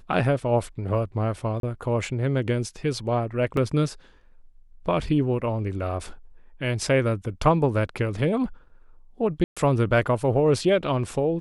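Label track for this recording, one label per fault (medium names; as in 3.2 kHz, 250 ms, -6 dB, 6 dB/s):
1.600000	1.630000	dropout 32 ms
3.570000	3.570000	dropout 2.3 ms
9.440000	9.570000	dropout 126 ms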